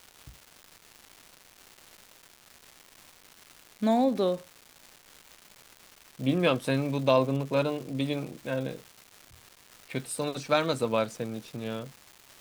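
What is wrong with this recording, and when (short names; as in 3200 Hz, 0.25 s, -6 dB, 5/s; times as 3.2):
crackle 550/s -39 dBFS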